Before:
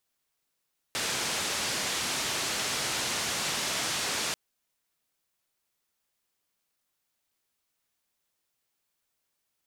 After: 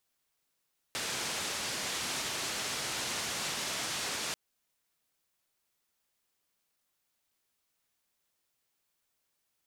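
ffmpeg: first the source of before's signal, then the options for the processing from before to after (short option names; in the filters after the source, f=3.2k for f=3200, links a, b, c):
-f lavfi -i "anoisesrc=c=white:d=3.39:r=44100:seed=1,highpass=f=85,lowpass=f=6900,volume=-21.3dB"
-af "alimiter=level_in=3dB:limit=-24dB:level=0:latency=1:release=200,volume=-3dB"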